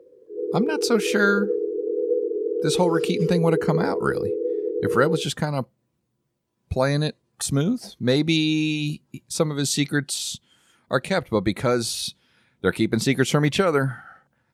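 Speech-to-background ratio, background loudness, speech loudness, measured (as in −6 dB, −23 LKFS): 2.5 dB, −26.0 LKFS, −23.5 LKFS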